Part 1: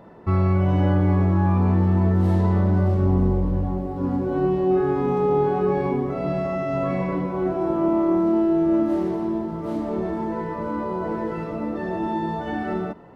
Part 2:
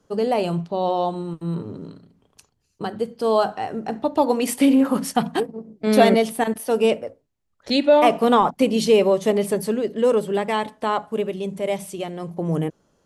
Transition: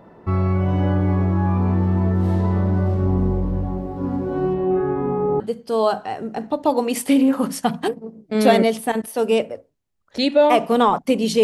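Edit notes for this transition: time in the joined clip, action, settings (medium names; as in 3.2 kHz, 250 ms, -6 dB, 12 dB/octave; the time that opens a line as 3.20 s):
part 1
4.53–5.40 s: low-pass 3.3 kHz -> 1.1 kHz
5.40 s: go over to part 2 from 2.92 s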